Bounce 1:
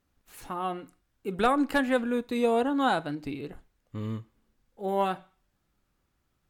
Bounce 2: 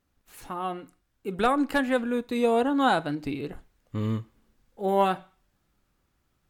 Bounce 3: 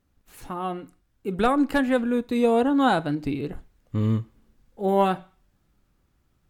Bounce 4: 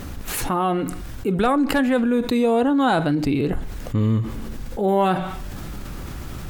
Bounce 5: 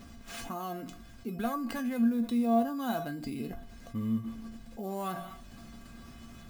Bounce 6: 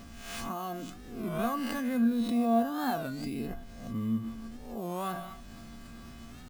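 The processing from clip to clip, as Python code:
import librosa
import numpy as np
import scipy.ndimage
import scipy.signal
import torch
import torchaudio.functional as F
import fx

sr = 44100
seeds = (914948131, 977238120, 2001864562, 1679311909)

y1 = fx.rider(x, sr, range_db=3, speed_s=2.0)
y1 = y1 * 10.0 ** (3.0 / 20.0)
y2 = fx.low_shelf(y1, sr, hz=370.0, db=6.5)
y3 = fx.env_flatten(y2, sr, amount_pct=70)
y4 = fx.sample_hold(y3, sr, seeds[0], rate_hz=13000.0, jitter_pct=0)
y4 = fx.comb_fb(y4, sr, f0_hz=230.0, decay_s=0.21, harmonics='odd', damping=0.0, mix_pct=90)
y4 = y4 * 10.0 ** (-1.5 / 20.0)
y5 = fx.spec_swells(y4, sr, rise_s=0.67)
y5 = fx.record_warp(y5, sr, rpm=33.33, depth_cents=160.0)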